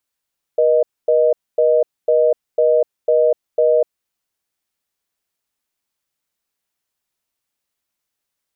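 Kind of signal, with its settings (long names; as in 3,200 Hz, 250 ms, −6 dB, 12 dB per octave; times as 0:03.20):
call progress tone reorder tone, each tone −13.5 dBFS 3.27 s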